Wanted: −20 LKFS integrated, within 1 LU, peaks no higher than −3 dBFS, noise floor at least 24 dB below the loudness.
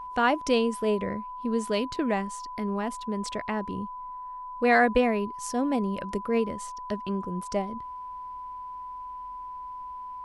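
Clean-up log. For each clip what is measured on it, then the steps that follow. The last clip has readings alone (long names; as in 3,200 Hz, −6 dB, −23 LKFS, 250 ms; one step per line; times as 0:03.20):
interfering tone 1,000 Hz; level of the tone −36 dBFS; integrated loudness −29.0 LKFS; sample peak −9.0 dBFS; target loudness −20.0 LKFS
→ notch filter 1,000 Hz, Q 30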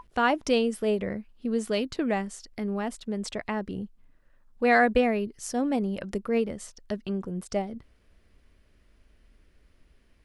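interfering tone none found; integrated loudness −28.0 LKFS; sample peak −9.5 dBFS; target loudness −20.0 LKFS
→ level +8 dB
brickwall limiter −3 dBFS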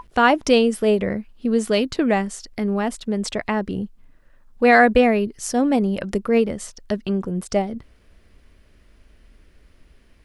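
integrated loudness −20.5 LKFS; sample peak −3.0 dBFS; background noise floor −55 dBFS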